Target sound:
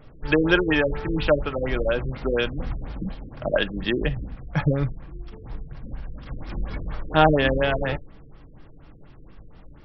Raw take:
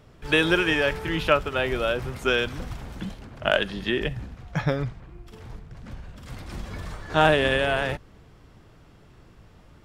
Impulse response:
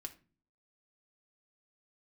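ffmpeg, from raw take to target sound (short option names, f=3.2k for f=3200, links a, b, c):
-filter_complex "[0:a]asplit=2[a][b];[1:a]atrim=start_sample=2205,atrim=end_sample=3087,lowshelf=f=69:g=11[c];[b][c]afir=irnorm=-1:irlink=0,volume=2dB[d];[a][d]amix=inputs=2:normalize=0,afftfilt=real='re*lt(b*sr/1024,500*pow(5900/500,0.5+0.5*sin(2*PI*4.2*pts/sr)))':imag='im*lt(b*sr/1024,500*pow(5900/500,0.5+0.5*sin(2*PI*4.2*pts/sr)))':win_size=1024:overlap=0.75,volume=-2.5dB"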